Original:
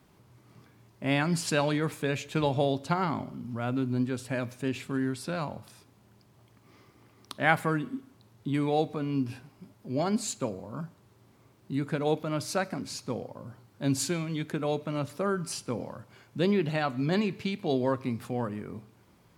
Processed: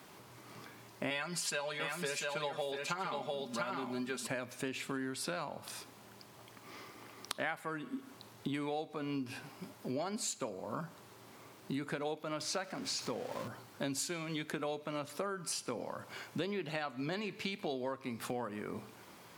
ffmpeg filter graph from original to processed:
-filter_complex "[0:a]asettb=1/sr,asplit=3[a][b][c];[a]atrim=end=1.104[d];[b]atrim=start=1.1:end=4.27,asetpts=PTS-STARTPTS,afade=t=in:d=0.004:c=qsin,afade=t=out:st=3.166:d=0.004:c=qsin,lowshelf=f=460:g=-6,aecho=1:1:5:0.77,atrim=end_sample=139797,aecho=1:1:694:0.531,atrim=end_sample=139797[e];[c]atrim=start=4.266[f];[d][e]acrossfade=d=0.004:c1=hsin:c2=qsin[g];[g][f]acrossfade=d=0.004:c1=qsin:c2=hsin,asettb=1/sr,asplit=3[h][i][j];[h]atrim=end=12.404[k];[i]atrim=start=12.4:end=13.48,asetpts=PTS-STARTPTS,afade=t=in:d=0.004:c=qsin,afade=t=out:st=1.076:d=0.004:c=qsin,aeval=exprs='val(0)+0.5*0.00794*sgn(val(0))':c=same,highpass=48,acrossover=split=8200[l][m];[m]acompressor=threshold=-58dB:ratio=4:attack=1:release=60[n];[l][n]amix=inputs=2:normalize=0[o];[j]atrim=start=13.476[p];[k][o]acrossfade=d=0.004:c1=hsin:c2=qsin[q];[q][p]acrossfade=d=0.004:c1=qsin:c2=hsin,highpass=f=550:p=1,acompressor=threshold=-46dB:ratio=8,volume=10.5dB"

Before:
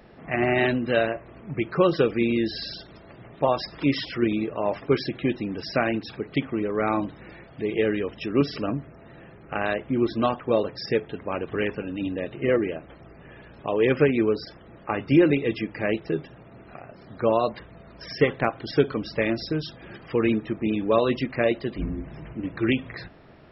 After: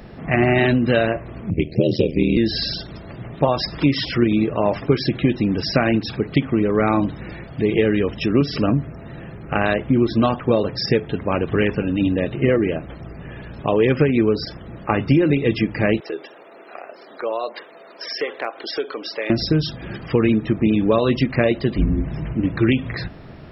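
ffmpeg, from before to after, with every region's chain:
-filter_complex "[0:a]asettb=1/sr,asplit=3[a][b][c];[a]atrim=end=1.504[d];[b]atrim=start=1.5:end=2.37,asetpts=PTS-STARTPTS,afade=t=in:d=0.004:c=qsin,afade=t=out:st=0.866:d=0.004:c=qsin,aeval=exprs='val(0)*sin(2*PI*39*n/s)':c=same,asuperstop=centerf=1200:order=8:qfactor=0.76[e];[c]atrim=start=2.366[f];[d][e]acrossfade=d=0.004:c1=hsin:c2=qsin[g];[g][f]acrossfade=d=0.004:c1=qsin:c2=hsin,asettb=1/sr,asplit=3[h][i][j];[h]atrim=end=16.004[k];[i]atrim=start=16:end=19.3,asetpts=PTS-STARTPTS,afade=t=in:d=0.004:c=qsin,afade=t=out:st=3.296:d=0.004:c=qsin,highpass=f=390:w=0.5412,highpass=f=390:w=1.3066,acompressor=threshold=-36dB:ratio=2:attack=3.2:release=140:knee=1:detection=peak[l];[j]atrim=start=19.296[m];[k][l]acrossfade=d=0.004:c1=hsin:c2=qsin[n];[n][m]acrossfade=d=0.004:c1=qsin:c2=hsin,bass=f=250:g=7,treble=f=4k:g=4,acompressor=threshold=-20dB:ratio=6,volume=7.5dB"

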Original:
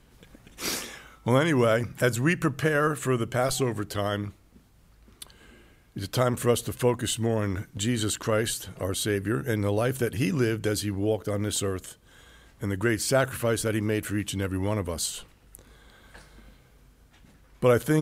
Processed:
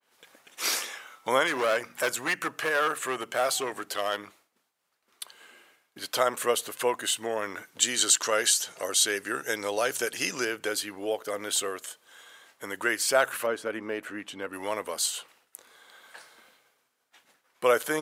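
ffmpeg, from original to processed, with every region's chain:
-filter_complex "[0:a]asettb=1/sr,asplit=3[a][b][c];[a]atrim=end=1.474[d];[b]atrim=start=1.47:end=4.27,asetpts=PTS-STARTPTS,afade=t=in:d=0.004:c=qsin,afade=t=out:st=2.796:d=0.004:c=qsin,bandreject=f=47.58:t=h:w=4,bandreject=f=95.16:t=h:w=4,bandreject=f=142.74:t=h:w=4,bandreject=f=190.32:t=h:w=4,bandreject=f=237.9:t=h:w=4,bandreject=f=285.48:t=h:w=4,asoftclip=type=hard:threshold=-20.5dB[e];[c]atrim=start=4.266[f];[d][e]acrossfade=d=0.004:c1=hsin:c2=qsin[g];[g][f]acrossfade=d=0.004:c1=qsin:c2=hsin,asettb=1/sr,asplit=3[h][i][j];[h]atrim=end=7.824[k];[i]atrim=start=7.82:end=10.45,asetpts=PTS-STARTPTS,afade=t=in:d=0.004:c=qsin,afade=t=out:st=2.626:d=0.004:c=qsin,equalizer=f=6.1k:t=o:w=1.2:g=11,bandreject=f=1.1k:w=24[l];[j]atrim=start=10.446[m];[k][l]acrossfade=d=0.004:c1=hsin:c2=qsin[n];[n][m]acrossfade=d=0.004:c1=qsin:c2=hsin,asettb=1/sr,asplit=3[o][p][q];[o]atrim=end=13.464[r];[p]atrim=start=13.46:end=14.53,asetpts=PTS-STARTPTS,afade=t=in:d=0.004:c=qsin,afade=t=out:st=1.066:d=0.004:c=qsin,lowpass=f=1.2k:p=1,equalizer=f=240:t=o:w=0.34:g=5[s];[q]atrim=start=14.526[t];[r][s]acrossfade=d=0.004:c1=hsin:c2=qsin[u];[u][t]acrossfade=d=0.004:c1=qsin:c2=hsin,highpass=640,agate=range=-33dB:threshold=-58dB:ratio=3:detection=peak,adynamicequalizer=threshold=0.00631:dfrequency=3000:dqfactor=0.7:tfrequency=3000:tqfactor=0.7:attack=5:release=100:ratio=0.375:range=1.5:mode=cutabove:tftype=highshelf,volume=3.5dB"

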